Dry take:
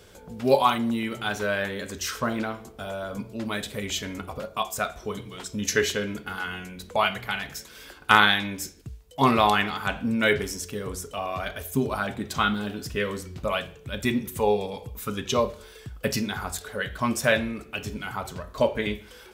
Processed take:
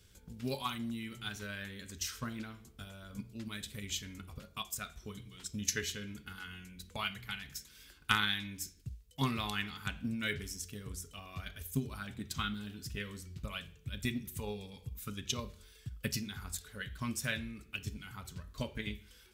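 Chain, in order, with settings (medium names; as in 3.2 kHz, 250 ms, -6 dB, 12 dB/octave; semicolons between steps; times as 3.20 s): amplifier tone stack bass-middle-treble 6-0-2; transient shaper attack +6 dB, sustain +1 dB; trim +5 dB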